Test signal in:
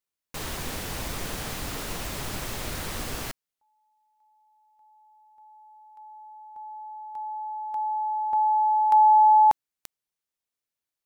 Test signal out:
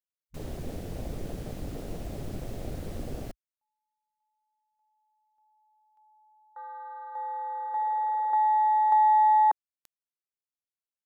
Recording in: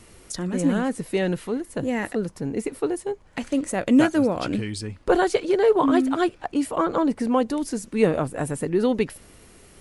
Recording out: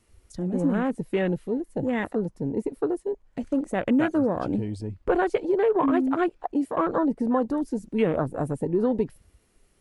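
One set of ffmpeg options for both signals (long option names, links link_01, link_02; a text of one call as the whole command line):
ffmpeg -i in.wav -af "afwtdn=0.0251,acompressor=threshold=-19dB:ratio=6:attack=28:release=79:knee=6" out.wav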